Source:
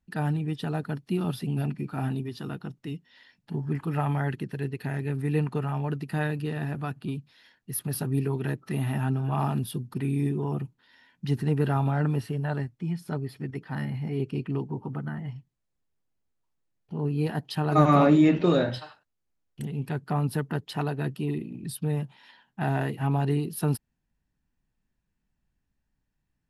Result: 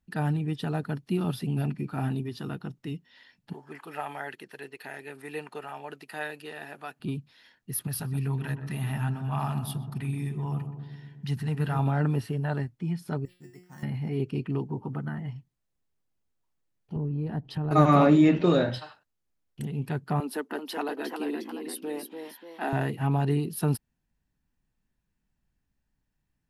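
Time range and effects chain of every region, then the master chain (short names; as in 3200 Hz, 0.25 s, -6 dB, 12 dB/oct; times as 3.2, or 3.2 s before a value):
3.53–7 HPF 600 Hz + dynamic EQ 1100 Hz, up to -5 dB, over -50 dBFS, Q 2.2
7.87–11.79 bell 360 Hz -12 dB 1.4 oct + darkening echo 0.125 s, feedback 72%, low-pass 1000 Hz, level -8 dB
13.25–13.83 careless resampling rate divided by 6×, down none, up hold + expander -43 dBFS + resonator 180 Hz, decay 0.48 s, mix 90%
16.96–17.71 tilt -3.5 dB/oct + compressor 4:1, threshold -29 dBFS
20.2–22.73 steep high-pass 240 Hz 48 dB/oct + echoes that change speed 0.384 s, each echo +1 st, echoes 2, each echo -6 dB
whole clip: dry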